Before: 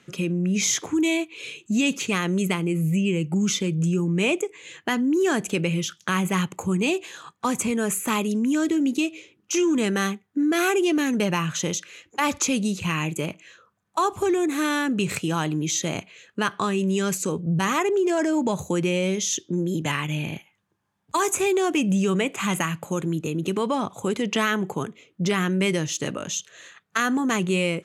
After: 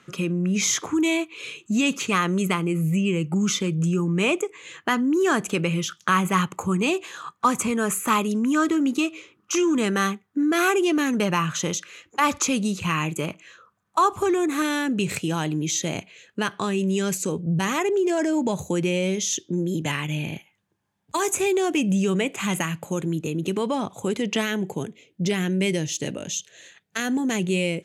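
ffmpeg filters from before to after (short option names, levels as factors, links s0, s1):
-af "asetnsamples=n=441:p=0,asendcmd='8.44 equalizer g 15;9.55 equalizer g 5.5;14.62 equalizer g -4.5;24.41 equalizer g -14',equalizer=f=1200:t=o:w=0.61:g=8.5"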